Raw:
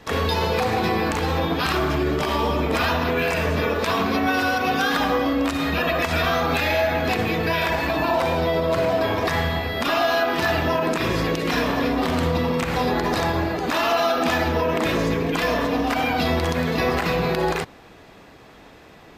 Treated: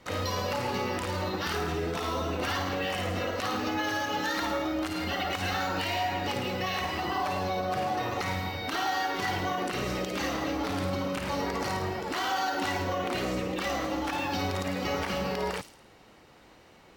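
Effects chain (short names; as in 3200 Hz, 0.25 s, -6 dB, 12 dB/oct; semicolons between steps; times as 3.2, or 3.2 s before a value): thin delay 61 ms, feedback 53%, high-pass 4600 Hz, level -3 dB; varispeed +13%; gain -9 dB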